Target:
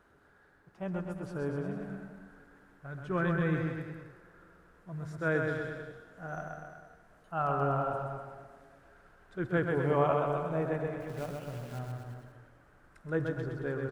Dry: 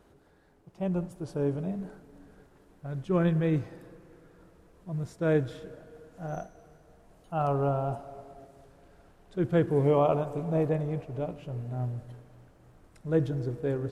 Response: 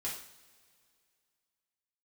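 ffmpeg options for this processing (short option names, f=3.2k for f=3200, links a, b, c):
-filter_complex "[0:a]equalizer=f=1.5k:t=o:w=0.99:g=13.5,asettb=1/sr,asplit=3[a][b][c];[a]atrim=end=11.004[d];[b]atrim=start=11:end=11.79,asetpts=PTS-STARTPTS,afade=t=in:d=0.004:c=qsin,afade=t=out:st=0.786:d=0.004:c=qsin,acrusher=bits=3:mode=log:mix=0:aa=0.000001[e];[c]atrim=start=11.786[f];[d][e]acrossfade=d=0.004:c1=hsin:c2=qsin[g];[g][f]acrossfade=d=0.004:c1=qsin:c2=hsin,asplit=2[h][i];[i]aecho=0:1:130|247|352.3|447.1|532.4:0.631|0.398|0.251|0.158|0.1[j];[h][j]amix=inputs=2:normalize=0,volume=-7.5dB"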